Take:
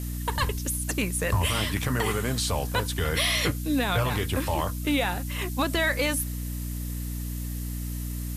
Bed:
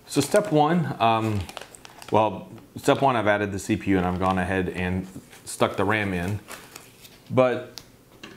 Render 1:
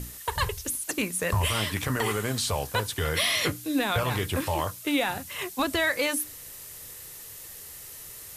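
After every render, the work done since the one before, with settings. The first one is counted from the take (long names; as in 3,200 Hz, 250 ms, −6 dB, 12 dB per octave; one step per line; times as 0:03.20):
mains-hum notches 60/120/180/240/300 Hz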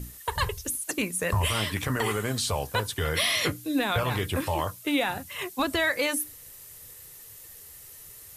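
broadband denoise 6 dB, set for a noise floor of −44 dBFS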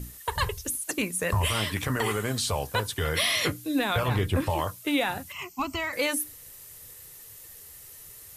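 0:04.08–0:04.50: spectral tilt −1.5 dB per octave
0:05.32–0:05.93: phaser with its sweep stopped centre 2,500 Hz, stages 8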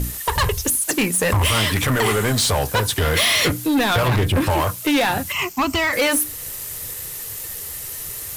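in parallel at −2.5 dB: downward compressor, threshold −35 dBFS, peak gain reduction 14 dB
on the sum: leveller curve on the samples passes 3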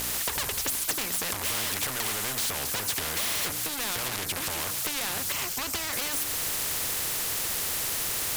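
downward compressor, threshold −23 dBFS, peak gain reduction 7.5 dB
every bin compressed towards the loudest bin 4 to 1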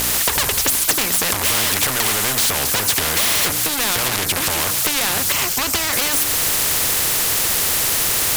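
level +11.5 dB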